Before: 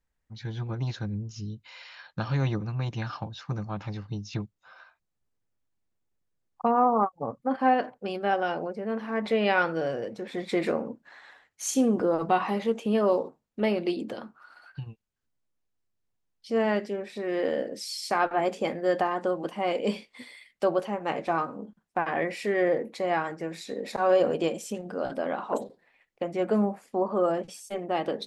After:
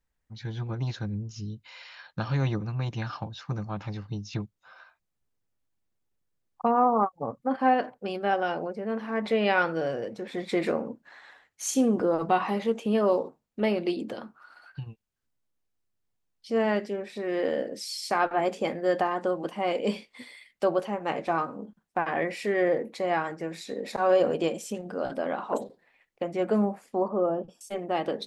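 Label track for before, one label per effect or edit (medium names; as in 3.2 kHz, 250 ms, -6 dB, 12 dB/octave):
27.080000	27.610000	boxcar filter over 21 samples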